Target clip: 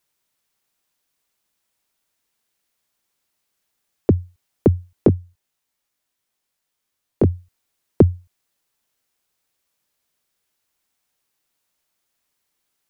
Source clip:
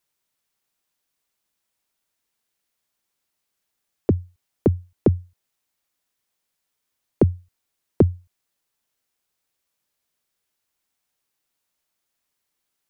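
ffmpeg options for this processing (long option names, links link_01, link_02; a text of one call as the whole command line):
ffmpeg -i in.wav -filter_complex "[0:a]asplit=3[link_01][link_02][link_03];[link_01]afade=type=out:start_time=5.07:duration=0.02[link_04];[link_02]flanger=delay=19:depth=2.2:speed=2.7,afade=type=in:start_time=5.07:duration=0.02,afade=type=out:start_time=7.28:duration=0.02[link_05];[link_03]afade=type=in:start_time=7.28:duration=0.02[link_06];[link_04][link_05][link_06]amix=inputs=3:normalize=0,volume=3.5dB" out.wav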